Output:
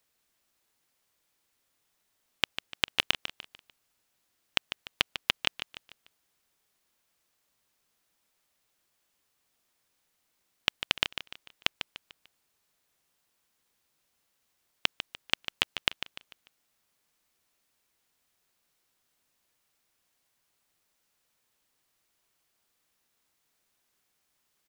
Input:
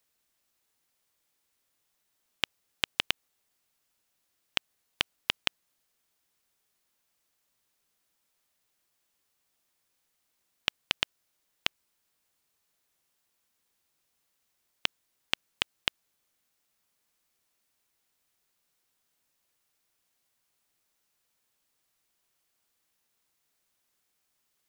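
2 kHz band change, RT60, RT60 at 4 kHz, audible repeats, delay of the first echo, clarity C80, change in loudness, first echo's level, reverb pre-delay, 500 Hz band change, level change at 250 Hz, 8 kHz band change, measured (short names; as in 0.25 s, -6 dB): +2.5 dB, none, none, 3, 0.148 s, none, +1.5 dB, -10.5 dB, none, +3.0 dB, +3.0 dB, +1.0 dB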